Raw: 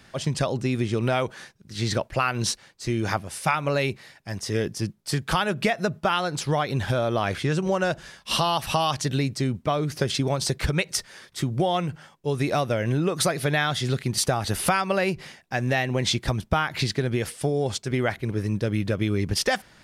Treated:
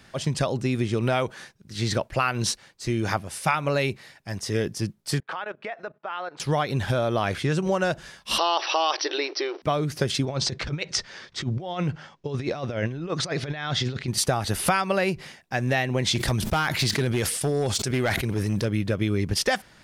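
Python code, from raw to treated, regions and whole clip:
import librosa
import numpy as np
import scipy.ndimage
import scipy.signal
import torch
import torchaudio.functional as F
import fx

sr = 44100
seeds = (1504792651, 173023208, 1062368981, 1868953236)

y = fx.chain(x, sr, fx.bandpass_edges(low_hz=510.0, high_hz=2100.0),
    fx.level_steps(step_db=16), at=(5.2, 6.4))
y = fx.chain(y, sr, fx.law_mismatch(coded='A'),
    fx.brickwall_bandpass(low_hz=300.0, high_hz=6000.0),
    fx.env_flatten(amount_pct=50), at=(8.38, 9.62))
y = fx.chain(y, sr, fx.lowpass(hz=6200.0, slope=24),
    fx.over_compress(threshold_db=-27.0, ratio=-0.5), at=(10.25, 14.08))
y = fx.chain(y, sr, fx.high_shelf(hz=3800.0, db=7.0),
    fx.clip_hard(threshold_db=-18.5),
    fx.sustainer(db_per_s=32.0), at=(16.15, 18.65))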